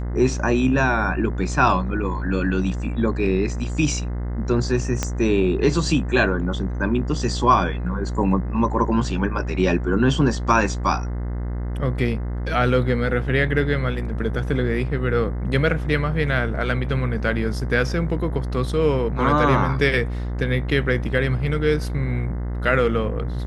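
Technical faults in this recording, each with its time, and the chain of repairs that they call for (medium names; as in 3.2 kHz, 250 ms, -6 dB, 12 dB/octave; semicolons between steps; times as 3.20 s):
buzz 60 Hz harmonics 35 -26 dBFS
5.03 s: pop -7 dBFS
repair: de-click; de-hum 60 Hz, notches 35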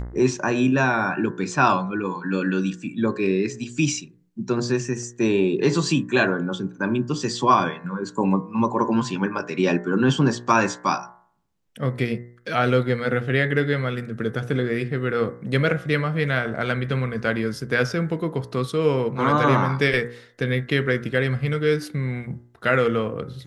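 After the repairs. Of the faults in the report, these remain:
5.03 s: pop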